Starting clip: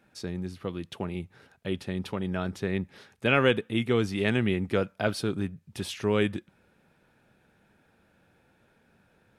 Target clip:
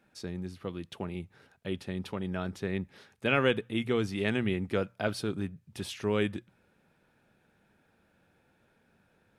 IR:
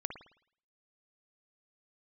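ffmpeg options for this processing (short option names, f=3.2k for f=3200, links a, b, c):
-af "bandreject=f=60:t=h:w=6,bandreject=f=120:t=h:w=6,volume=-3.5dB"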